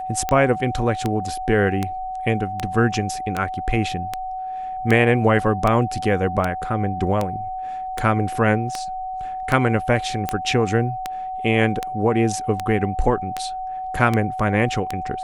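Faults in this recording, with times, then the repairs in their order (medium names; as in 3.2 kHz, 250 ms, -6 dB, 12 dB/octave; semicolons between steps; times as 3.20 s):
tick 78 rpm -8 dBFS
whine 750 Hz -26 dBFS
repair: de-click; band-stop 750 Hz, Q 30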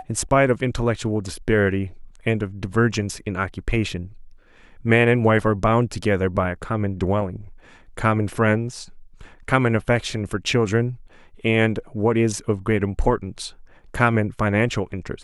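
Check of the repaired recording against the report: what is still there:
nothing left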